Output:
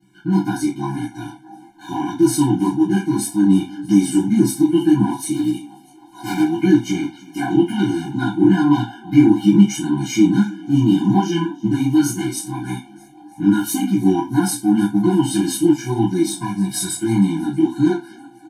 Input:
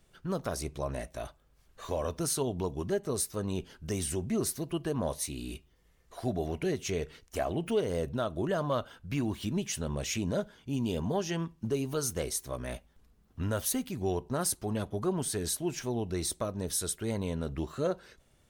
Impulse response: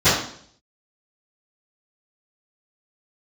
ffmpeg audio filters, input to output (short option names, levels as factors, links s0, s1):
-filter_complex "[0:a]asettb=1/sr,asplit=3[s0][s1][s2];[s0]atrim=end=5.344[s3];[s1]atrim=start=5.34:end=6.4,asetpts=PTS-STARTPTS,afade=t=in:d=0.004:c=qsin,afade=t=out:st=1.056:d=0.004:c=qsin,aeval=exprs='(mod(31.6*val(0)+1,2)-1)/31.6':c=same[s4];[s2]atrim=start=6.396[s5];[s3][s4]acrossfade=d=0.004:c1=hsin:c2=qsin[s6];[s6][s5]acrossfade=d=0.004:c1=qsin:c2=hsin,asettb=1/sr,asplit=3[s7][s8][s9];[s7]atrim=end=14.974[s10];[s8]atrim=start=14.97:end=15.63,asetpts=PTS-STARTPTS,afade=t=in:d=0.004:c=qsin,afade=t=out:st=0.656:d=0.004:c=qsin,equalizer=f=2800:w=3.5:g=11.5[s11];[s9]atrim=start=15.626[s12];[s10][s11]acrossfade=d=0.004:c1=hsin:c2=qsin[s13];[s13][s12]acrossfade=d=0.004:c1=qsin:c2=hsin,asplit=6[s14][s15][s16][s17][s18][s19];[s15]adelay=320,afreqshift=87,volume=0.0944[s20];[s16]adelay=640,afreqshift=174,volume=0.0596[s21];[s17]adelay=960,afreqshift=261,volume=0.0376[s22];[s18]adelay=1280,afreqshift=348,volume=0.0237[s23];[s19]adelay=1600,afreqshift=435,volume=0.0148[s24];[s14][s20][s21][s22][s23][s24]amix=inputs=6:normalize=0,aeval=exprs='0.112*(cos(1*acos(clip(val(0)/0.112,-1,1)))-cos(1*PI/2))+0.00562*(cos(5*acos(clip(val(0)/0.112,-1,1)))-cos(5*PI/2))+0.00794*(cos(7*acos(clip(val(0)/0.112,-1,1)))-cos(7*PI/2))':c=same,asettb=1/sr,asplit=3[s25][s26][s27];[s25]atrim=end=16.374[s28];[s26]atrim=start=16.37:end=16.98,asetpts=PTS-STARTPTS,afade=t=in:d=0.004:c=qsin,afade=t=out:st=0.606:d=0.004:c=qsin,aecho=1:1:1.8:0.84,atrim=end_sample=26901[s29];[s27]atrim=start=16.976[s30];[s28][s29]acrossfade=d=0.004:c1=hsin:c2=qsin[s31];[s31][s30]acrossfade=d=0.004:c1=qsin:c2=hsin,flanger=delay=15:depth=8:speed=1.8,equalizer=f=100:t=o:w=0.33:g=-4,equalizer=f=160:t=o:w=0.33:g=-9,equalizer=f=315:t=o:w=0.33:g=7[s32];[1:a]atrim=start_sample=2205,afade=t=out:st=0.31:d=0.01,atrim=end_sample=14112,asetrate=88200,aresample=44100[s33];[s32][s33]afir=irnorm=-1:irlink=0,afftfilt=real='re*eq(mod(floor(b*sr/1024/350),2),0)':imag='im*eq(mod(floor(b*sr/1024/350),2),0)':win_size=1024:overlap=0.75,volume=0.794"